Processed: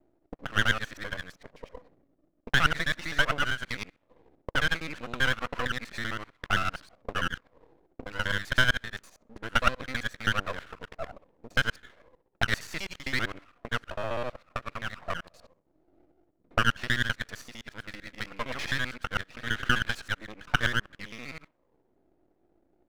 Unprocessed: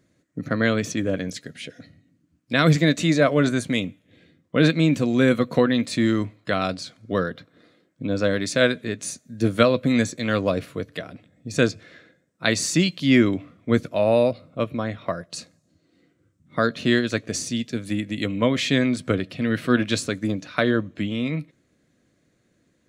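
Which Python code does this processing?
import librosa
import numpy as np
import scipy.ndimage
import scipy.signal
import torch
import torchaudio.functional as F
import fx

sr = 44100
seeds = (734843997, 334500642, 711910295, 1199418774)

y = fx.local_reverse(x, sr, ms=65.0)
y = fx.auto_wah(y, sr, base_hz=360.0, top_hz=1500.0, q=3.9, full_db=-23.5, direction='up')
y = np.maximum(y, 0.0)
y = y * 10.0 ** (9.0 / 20.0)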